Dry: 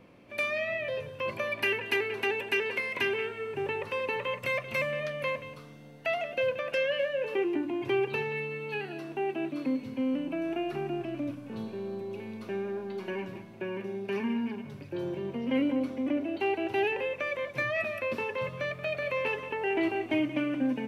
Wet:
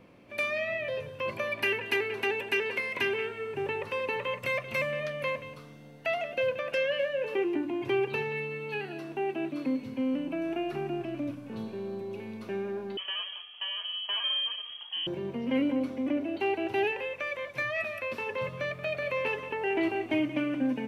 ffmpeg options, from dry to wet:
-filter_complex "[0:a]asettb=1/sr,asplit=3[s0][s1][s2];[s0]atrim=end=12.974[s3];[s1]atrim=start=12.97:end=15.07,asetpts=PTS-STARTPTS,afade=t=in:d=0.004:c=qsin,afade=t=out:st=2.096:d=0.004:c=qsin,lowpass=f=2900:t=q:w=0.5098,lowpass=f=2900:t=q:w=0.6013,lowpass=f=2900:t=q:w=0.9,lowpass=f=2900:t=q:w=2.563,afreqshift=-3400[s4];[s2]atrim=start=15.066[s5];[s3][s4]acrossfade=d=0.004:c1=hsin:c2=qsin[s6];[s6][s5]acrossfade=d=0.004:c1=qsin:c2=hsin,asettb=1/sr,asplit=3[s7][s8][s9];[s7]atrim=end=16.914[s10];[s8]atrim=start=16.91:end=18.27,asetpts=PTS-STARTPTS,afade=t=in:d=0.004:c=qsin,afade=t=out:st=1.356:d=0.004:c=qsin,equalizer=f=220:t=o:w=2.8:g=-6.5[s11];[s9]atrim=start=18.266[s12];[s10][s11]acrossfade=d=0.004:c1=hsin:c2=qsin[s13];[s13][s12]acrossfade=d=0.004:c1=qsin:c2=hsin"

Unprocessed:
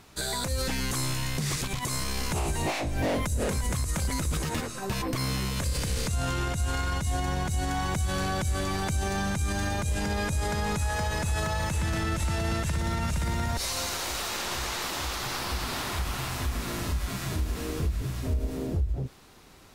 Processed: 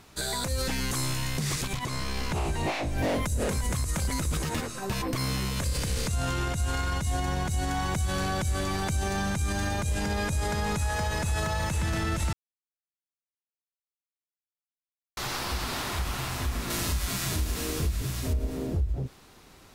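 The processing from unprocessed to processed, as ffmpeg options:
-filter_complex "[0:a]asettb=1/sr,asplit=3[s0][s1][s2];[s0]atrim=end=1.774[s3];[s1]atrim=start=1.77:end=2.98,asetpts=PTS-STARTPTS,afade=t=in:d=0.004:c=qsin,afade=t=out:st=1.206:d=0.004:c=qsin,acrossover=split=5000[s4][s5];[s5]acompressor=threshold=0.00501:ratio=4:attack=1:release=60[s6];[s4][s6]amix=inputs=2:normalize=0[s7];[s2]atrim=start=2.976[s8];[s3][s7]acrossfade=d=0.004:c1=hsin:c2=qsin[s9];[s9][s8]acrossfade=d=0.004:c1=qsin:c2=hsin,asettb=1/sr,asplit=3[s10][s11][s12];[s10]atrim=end=16.704[s13];[s11]atrim=start=16.7:end=18.33,asetpts=PTS-STARTPTS,afade=t=in:d=0.004:c=qsin,afade=t=out:st=1.626:d=0.004:c=qsin,highshelf=f=2700:g=8.5[s14];[s12]atrim=start=18.326[s15];[s13][s14]acrossfade=d=0.004:c1=hsin:c2=qsin[s16];[s16][s15]acrossfade=d=0.004:c1=qsin:c2=hsin,asplit=3[s17][s18][s19];[s17]atrim=end=12.33,asetpts=PTS-STARTPTS,afade=t=out:st=12.326:d=0.004:c=hsin[s20];[s18]atrim=start=12.33:end=15.17,asetpts=PTS-STARTPTS,volume=0[s21];[s19]atrim=start=15.17,asetpts=PTS-STARTPTS,afade=t=in:d=0.004:c=hsin[s22];[s20][s21][s22]concat=n=3:v=0:a=1"

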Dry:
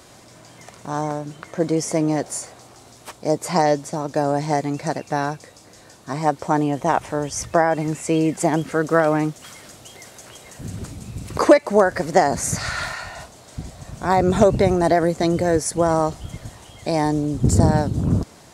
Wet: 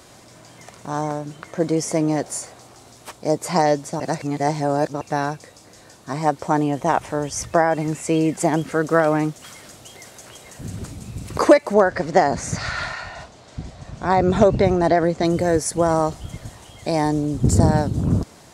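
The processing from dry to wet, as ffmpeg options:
-filter_complex "[0:a]asettb=1/sr,asplit=3[s0][s1][s2];[s0]atrim=end=11.744[s3];[s1]atrim=start=11.74:end=15.25,asetpts=PTS-STARTPTS,afade=t=in:d=0.004:c=qsin,afade=t=out:st=3.506:d=0.004:c=qsin,lowpass=5500[s4];[s2]atrim=start=15.246[s5];[s3][s4]acrossfade=d=0.004:c1=hsin:c2=qsin[s6];[s6][s5]acrossfade=d=0.004:c1=qsin:c2=hsin,asplit=3[s7][s8][s9];[s7]atrim=end=4.002[s10];[s8]atrim=start=3.998:end=5.012,asetpts=PTS-STARTPTS,areverse[s11];[s9]atrim=start=5.008[s12];[s10][s11]acrossfade=d=0.004:c1=hsin:c2=hsin[s13];[s13][s12]acrossfade=d=0.004:c1=hsin:c2=hsin"

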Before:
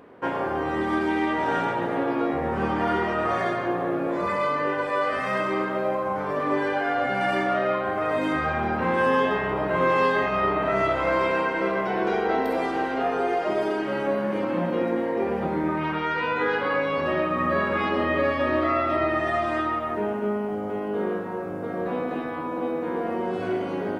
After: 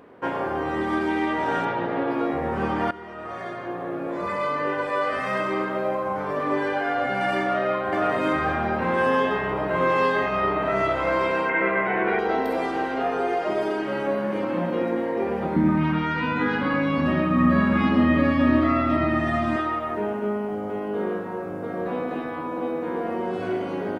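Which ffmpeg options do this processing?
-filter_complex "[0:a]asettb=1/sr,asplit=3[s0][s1][s2];[s0]atrim=end=1.654[s3];[s1]atrim=start=1.65:end=2.11,asetpts=PTS-STARTPTS,afade=t=in:d=0.004:c=qsin,afade=t=out:st=0.456:d=0.004:c=qsin,lowpass=f=5200:w=0.5412,lowpass=f=5200:w=1.3066[s4];[s2]atrim=start=2.106[s5];[s3][s4]acrossfade=d=0.004:c1=hsin:c2=qsin[s6];[s6][s5]acrossfade=d=0.004:c1=qsin:c2=hsin,asplit=2[s7][s8];[s8]afade=t=in:st=7.38:d=0.01,afade=t=out:st=8.01:d=0.01,aecho=0:1:540|1080|1620|2160|2700:0.707946|0.283178|0.113271|0.0453085|0.0181234[s9];[s7][s9]amix=inputs=2:normalize=0,asettb=1/sr,asplit=3[s10][s11][s12];[s10]atrim=end=11.494[s13];[s11]atrim=start=11.49:end=12.19,asetpts=PTS-STARTPTS,afade=t=in:d=0.004:c=qsin,afade=t=out:st=0.696:d=0.004:c=qsin,lowpass=f=2100:t=q:w=2.9[s14];[s12]atrim=start=12.186[s15];[s13][s14]acrossfade=d=0.004:c1=hsin:c2=qsin[s16];[s16][s15]acrossfade=d=0.004:c1=qsin:c2=hsin,asettb=1/sr,asplit=3[s17][s18][s19];[s17]atrim=end=15.564[s20];[s18]atrim=start=15.56:end=19.56,asetpts=PTS-STARTPTS,afade=t=in:d=0.004:c=qsin,afade=t=out:st=3.996:d=0.004:c=qsin,lowshelf=f=320:t=q:w=3:g=7.5[s21];[s19]atrim=start=19.556[s22];[s20][s21]acrossfade=d=0.004:c1=hsin:c2=qsin[s23];[s23][s22]acrossfade=d=0.004:c1=qsin:c2=hsin,asplit=2[s24][s25];[s24]atrim=end=2.91,asetpts=PTS-STARTPTS,afade=t=out:st=2.906:d=0.004:c=hsin:silence=0.133352[s26];[s25]atrim=start=2.91,asetpts=PTS-STARTPTS,afade=t=in:d=1.82:silence=0.133352[s27];[s26][s27]concat=n=2:v=0:a=1"

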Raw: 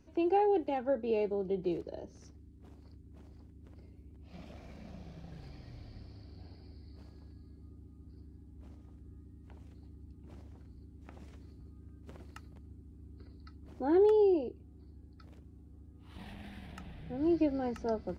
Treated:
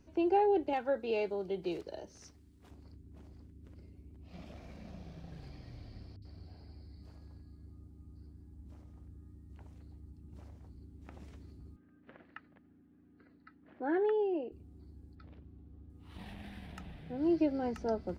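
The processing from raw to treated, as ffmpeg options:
-filter_complex "[0:a]asettb=1/sr,asplit=3[s0][s1][s2];[s0]atrim=end=0.734[s3];[s1]atrim=start=0.73:end=2.71,asetpts=PTS-STARTPTS,afade=t=in:d=0.004:c=qsin,afade=t=out:st=1.976:d=0.004:c=qsin,tiltshelf=f=640:g=-6.5[s4];[s2]atrim=start=2.706[s5];[s3][s4]acrossfade=d=0.004:c1=hsin:c2=qsin[s6];[s6][s5]acrossfade=d=0.004:c1=qsin:c2=hsin,asettb=1/sr,asplit=3[s7][s8][s9];[s7]atrim=end=3.394[s10];[s8]atrim=start=3.39:end=3.95,asetpts=PTS-STARTPTS,afade=t=in:d=0.004:c=qsin,afade=t=out:st=0.556:d=0.004:c=qsin,equalizer=f=810:t=o:w=0.7:g=-6[s11];[s9]atrim=start=3.946[s12];[s10][s11]acrossfade=d=0.004:c1=hsin:c2=qsin[s13];[s13][s12]acrossfade=d=0.004:c1=qsin:c2=hsin,asettb=1/sr,asplit=3[s14][s15][s16];[s14]atrim=end=6.164[s17];[s15]atrim=start=6.16:end=10.69,asetpts=PTS-STARTPTS,afade=t=in:d=0.004:c=qsin,afade=t=out:st=4.526:d=0.004:c=qsin,acrossover=split=310|3000[s18][s19][s20];[s20]adelay=60[s21];[s19]adelay=90[s22];[s18][s22][s21]amix=inputs=3:normalize=0,atrim=end_sample=199773[s23];[s16]atrim=start=10.686[s24];[s17][s23]acrossfade=d=0.004:c1=hsin:c2=qsin[s25];[s25][s24]acrossfade=d=0.004:c1=qsin:c2=hsin,asettb=1/sr,asplit=3[s26][s27][s28];[s26]atrim=end=11.764[s29];[s27]atrim=start=11.76:end=14.52,asetpts=PTS-STARTPTS,afade=t=in:d=0.004:c=qsin,afade=t=out:st=2.756:d=0.004:c=qsin,highpass=270,equalizer=f=390:t=q:w=4:g=-7,equalizer=f=930:t=q:w=4:g=-4,equalizer=f=1700:t=q:w=4:g=9,lowpass=f=3000:w=0.5412,lowpass=f=3000:w=1.3066[s30];[s28]atrim=start=14.516[s31];[s29][s30]acrossfade=d=0.004:c1=hsin:c2=qsin[s32];[s32][s31]acrossfade=d=0.004:c1=qsin:c2=hsin,asettb=1/sr,asplit=3[s33][s34][s35];[s33]atrim=end=15.154[s36];[s34]atrim=start=15.15:end=15.9,asetpts=PTS-STARTPTS,afade=t=in:d=0.004:c=qsin,afade=t=out:st=0.746:d=0.004:c=qsin,lowpass=f=4000:w=0.5412,lowpass=f=4000:w=1.3066[s37];[s35]atrim=start=15.896[s38];[s36][s37]acrossfade=d=0.004:c1=hsin:c2=qsin[s39];[s39][s38]acrossfade=d=0.004:c1=qsin:c2=hsin,asettb=1/sr,asplit=3[s40][s41][s42];[s40]atrim=end=16.974[s43];[s41]atrim=start=16.97:end=17.63,asetpts=PTS-STARTPTS,afade=t=in:d=0.004:c=qsin,afade=t=out:st=0.656:d=0.004:c=qsin,lowshelf=f=65:g=-11.5[s44];[s42]atrim=start=17.626[s45];[s43][s44]acrossfade=d=0.004:c1=hsin:c2=qsin[s46];[s46][s45]acrossfade=d=0.004:c1=qsin:c2=hsin"

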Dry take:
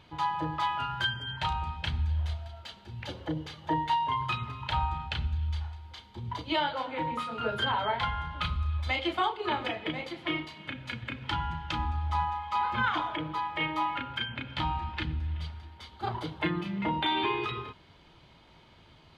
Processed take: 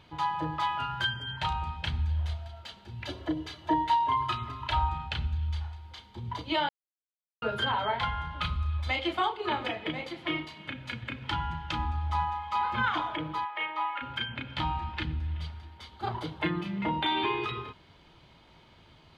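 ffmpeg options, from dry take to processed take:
-filter_complex "[0:a]asettb=1/sr,asplit=3[s0][s1][s2];[s0]atrim=end=3.014[s3];[s1]atrim=start=3.01:end=4.89,asetpts=PTS-STARTPTS,afade=t=in:d=0.004:c=qsin,afade=t=out:st=1.876:d=0.004:c=qsin,aecho=1:1:3:0.65,atrim=end_sample=82908[s4];[s2]atrim=start=4.886[s5];[s3][s4]acrossfade=d=0.004:c1=hsin:c2=qsin[s6];[s6][s5]acrossfade=d=0.004:c1=qsin:c2=hsin,asplit=3[s7][s8][s9];[s7]afade=t=out:st=13.44:d=0.02[s10];[s8]highpass=700,lowpass=2900,afade=t=in:st=13.44:d=0.02,afade=t=out:st=14.01:d=0.02[s11];[s9]afade=t=in:st=14.01:d=0.02[s12];[s10][s11][s12]amix=inputs=3:normalize=0,asplit=3[s13][s14][s15];[s13]atrim=end=6.69,asetpts=PTS-STARTPTS,afade=t=out:st=6.686:d=0.004:c=hsin[s16];[s14]atrim=start=6.69:end=7.42,asetpts=PTS-STARTPTS,volume=0[s17];[s15]atrim=start=7.42,asetpts=PTS-STARTPTS,afade=t=in:d=0.004:c=hsin[s18];[s16][s17][s18]concat=n=3:v=0:a=1"

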